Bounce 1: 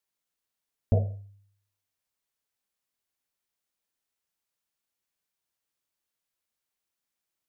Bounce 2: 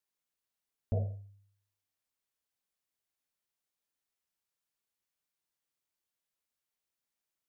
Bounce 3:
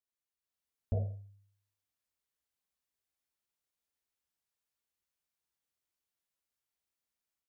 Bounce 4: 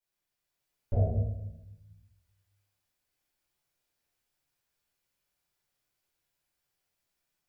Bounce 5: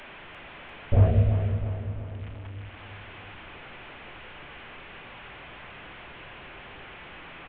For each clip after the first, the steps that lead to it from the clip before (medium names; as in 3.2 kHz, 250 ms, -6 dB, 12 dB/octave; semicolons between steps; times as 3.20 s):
peak limiter -19.5 dBFS, peak gain reduction 6.5 dB; trim -4 dB
peaking EQ 61 Hz +10 dB 0.48 oct; level rider gain up to 7 dB; trim -9 dB
simulated room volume 270 m³, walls mixed, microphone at 4.8 m; trim -4 dB
one-bit delta coder 16 kbps, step -46.5 dBFS; feedback delay 347 ms, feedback 53%, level -8.5 dB; trim +8.5 dB